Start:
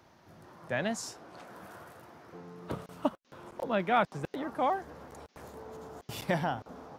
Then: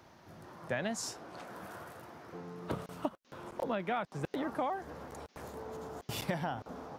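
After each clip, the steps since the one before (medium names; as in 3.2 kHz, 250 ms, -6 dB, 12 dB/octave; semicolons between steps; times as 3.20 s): compression 16:1, threshold -32 dBFS, peak gain reduction 12.5 dB; trim +2 dB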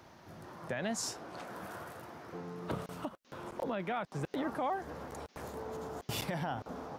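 peak limiter -27.5 dBFS, peak gain reduction 9 dB; trim +2 dB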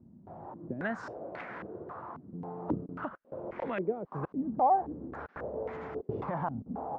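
step-sequenced low-pass 3.7 Hz 220–2100 Hz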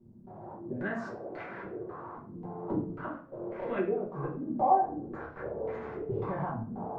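simulated room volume 41 m³, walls mixed, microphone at 1.2 m; trim -7 dB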